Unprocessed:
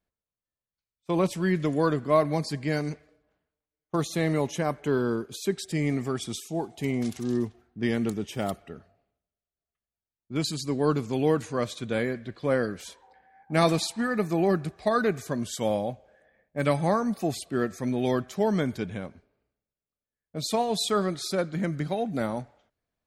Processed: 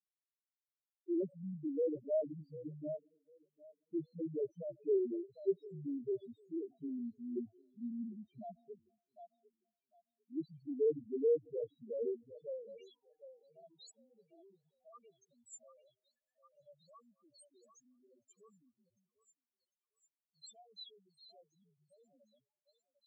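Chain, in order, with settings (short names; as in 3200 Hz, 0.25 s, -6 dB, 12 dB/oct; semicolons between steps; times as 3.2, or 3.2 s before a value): loudest bins only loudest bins 1; band-pass sweep 410 Hz -> 7200 Hz, 12.12–13.25; delay with a stepping band-pass 0.75 s, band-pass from 830 Hz, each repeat 0.7 oct, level -6.5 dB; gain +1 dB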